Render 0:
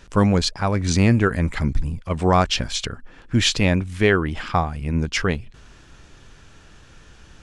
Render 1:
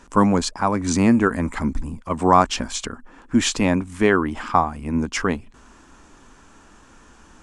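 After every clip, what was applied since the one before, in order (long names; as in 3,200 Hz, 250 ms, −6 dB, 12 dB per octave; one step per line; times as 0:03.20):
octave-band graphic EQ 125/250/1,000/4,000/8,000 Hz −8/+11/+11/−4/+9 dB
level −4.5 dB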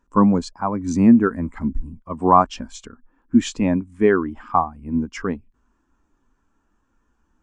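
every bin expanded away from the loudest bin 1.5 to 1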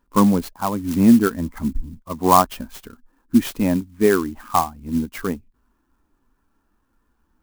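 converter with an unsteady clock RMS 0.041 ms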